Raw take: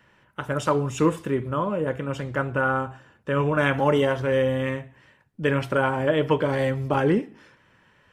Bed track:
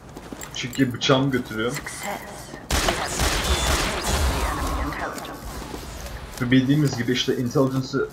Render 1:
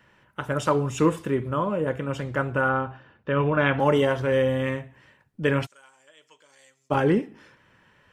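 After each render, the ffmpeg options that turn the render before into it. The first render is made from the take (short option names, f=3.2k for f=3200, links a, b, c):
-filter_complex "[0:a]asettb=1/sr,asplit=3[a][b][c];[a]atrim=end=2.694[d];[b]atrim=start=2.69:end=3.8,asetpts=PTS-STARTPTS,afade=t=in:d=0.004:c=qsin,afade=t=out:st=1.106:d=0.004:c=qsin,lowpass=f=4.3k:w=0.5412,lowpass=f=4.3k:w=1.3066[e];[c]atrim=start=3.796[f];[d][e]acrossfade=d=0.004:c1=hsin:c2=qsin[g];[g][f]acrossfade=d=0.004:c1=qsin:c2=hsin,asplit=3[h][i][j];[h]afade=t=out:st=5.65:d=0.02[k];[i]bandpass=f=7k:t=q:w=5,afade=t=in:st=5.65:d=0.02,afade=t=out:st=6.9:d=0.02[l];[j]afade=t=in:st=6.9:d=0.02[m];[k][l][m]amix=inputs=3:normalize=0"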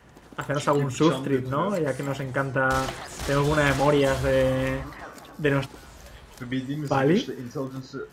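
-filter_complex "[1:a]volume=-11.5dB[a];[0:a][a]amix=inputs=2:normalize=0"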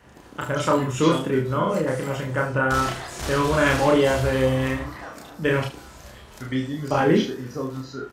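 -filter_complex "[0:a]asplit=2[a][b];[b]adelay=31,volume=-2dB[c];[a][c]amix=inputs=2:normalize=0,aecho=1:1:41|78:0.335|0.188"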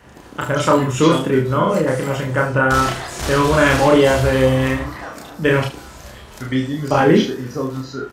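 -af "volume=6dB,alimiter=limit=-2dB:level=0:latency=1"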